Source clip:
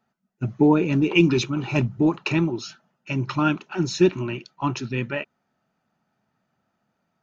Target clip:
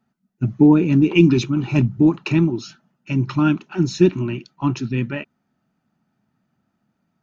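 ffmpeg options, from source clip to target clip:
-af "lowshelf=f=370:t=q:w=1.5:g=6,volume=-1dB"

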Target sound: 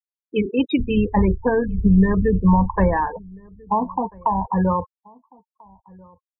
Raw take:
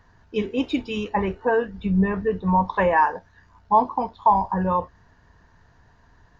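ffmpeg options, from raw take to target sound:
-filter_complex "[0:a]asettb=1/sr,asplit=3[a][b][c];[a]atrim=end=0.794[d];[b]atrim=start=0.79:end=3.08,asetpts=PTS-STARTPTS,afade=t=in:d=0.004:c=qsin,afade=t=out:st=2.286:d=0.004:c=qsin,aemphasis=mode=reproduction:type=bsi[e];[c]atrim=start=3.076[f];[d][e]acrossfade=d=0.004:c1=hsin:c2=qsin[g];[g][f]acrossfade=d=0.004:c1=qsin:c2=hsin,afftfilt=real='re*gte(hypot(re,im),0.0562)':imag='im*gte(hypot(re,im),0.0562)':win_size=1024:overlap=0.75,acrossover=split=320|1100[h][i][j];[h]acompressor=threshold=-19dB:ratio=4[k];[i]acompressor=threshold=-29dB:ratio=4[l];[j]acompressor=threshold=-35dB:ratio=4[m];[k][l][m]amix=inputs=3:normalize=0,asplit=2[n][o];[o]adelay=1341,volume=-26dB,highshelf=f=4k:g=-30.2[p];[n][p]amix=inputs=2:normalize=0,volume=5.5dB"

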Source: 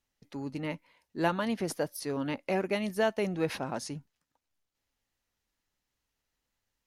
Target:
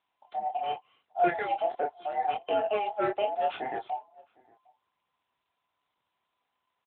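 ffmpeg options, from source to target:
-filter_complex "[0:a]afftfilt=real='real(if(between(b,1,1008),(2*floor((b-1)/48)+1)*48-b,b),0)':imag='imag(if(between(b,1,1008),(2*floor((b-1)/48)+1)*48-b,b),0)*if(between(b,1,1008),-1,1)':win_size=2048:overlap=0.75,highpass=f=340:p=1,equalizer=f=720:t=o:w=0.38:g=6.5,aecho=1:1:2.9:0.32,asplit=2[a][b];[b]adelay=758,volume=-27dB,highshelf=f=4k:g=-17.1[c];[a][c]amix=inputs=2:normalize=0,flanger=delay=22.5:depth=7.5:speed=0.76,volume=3.5dB" -ar 8000 -c:a libopencore_amrnb -b:a 12200

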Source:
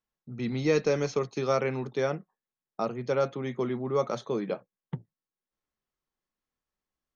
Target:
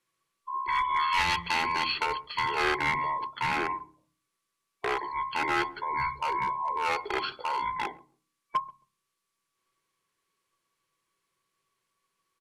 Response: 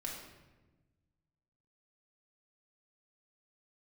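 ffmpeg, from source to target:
-filter_complex "[0:a]afftfilt=real='real(if(between(b,1,1012),(2*floor((b-1)/92)+1)*92-b,b),0)':imag='imag(if(between(b,1,1012),(2*floor((b-1)/92)+1)*92-b,b),0)*if(between(b,1,1012),-1,1)':win_size=2048:overlap=0.75,bandreject=f=60:t=h:w=6,bandreject=f=120:t=h:w=6,bandreject=f=180:t=h:w=6,bandreject=f=240:t=h:w=6,bandreject=f=300:t=h:w=6,bandreject=f=360:t=h:w=6,bandreject=f=420:t=h:w=6,bandreject=f=480:t=h:w=6,bandreject=f=540:t=h:w=6,acrossover=split=190|3000[a][b][c];[b]acompressor=threshold=-40dB:ratio=1.5[d];[a][d][c]amix=inputs=3:normalize=0,equalizer=f=250:t=o:w=0.67:g=8,equalizer=f=630:t=o:w=0.67:g=8,equalizer=f=2.5k:t=o:w=0.67:g=-5,volume=28.5dB,asoftclip=hard,volume=-28.5dB,highshelf=f=1.8k:t=q:w=3:g=7,asplit=2[e][f];[f]adelay=78,lowpass=f=870:p=1,volume=-19dB,asplit=2[g][h];[h]adelay=78,lowpass=f=870:p=1,volume=0.27[i];[e][g][i]amix=inputs=3:normalize=0,asetrate=25442,aresample=44100,volume=5dB"

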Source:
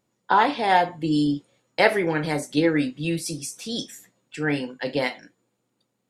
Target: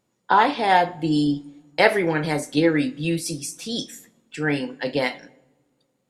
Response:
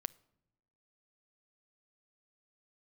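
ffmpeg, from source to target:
-filter_complex "[0:a]asplit=2[a][b];[1:a]atrim=start_sample=2205,asetrate=26019,aresample=44100[c];[b][c]afir=irnorm=-1:irlink=0,volume=7dB[d];[a][d]amix=inputs=2:normalize=0,volume=-9dB"

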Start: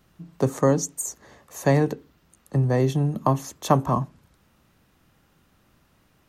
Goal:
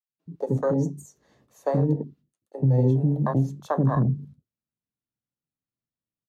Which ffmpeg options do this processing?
-filter_complex "[0:a]bandreject=f=48.24:t=h:w=4,bandreject=f=96.48:t=h:w=4,bandreject=f=144.72:t=h:w=4,bandreject=f=192.96:t=h:w=4,bandreject=f=241.2:t=h:w=4,agate=range=-27dB:threshold=-55dB:ratio=16:detection=peak,equalizer=f=125:t=o:w=1:g=9,equalizer=f=250:t=o:w=1:g=7,equalizer=f=500:t=o:w=1:g=7,equalizer=f=4k:t=o:w=1:g=4,acrossover=split=460[a][b];[a]adelay=80[c];[c][b]amix=inputs=2:normalize=0,dynaudnorm=f=190:g=3:m=10.5dB,alimiter=limit=-6dB:level=0:latency=1:release=83,flanger=delay=7.3:depth=7.1:regen=-68:speed=0.36:shape=sinusoidal,afwtdn=0.0501,adynamicequalizer=threshold=0.0141:dfrequency=2100:dqfactor=0.7:tfrequency=2100:tqfactor=0.7:attack=5:release=100:ratio=0.375:range=2:mode=boostabove:tftype=highshelf,volume=-3.5dB"

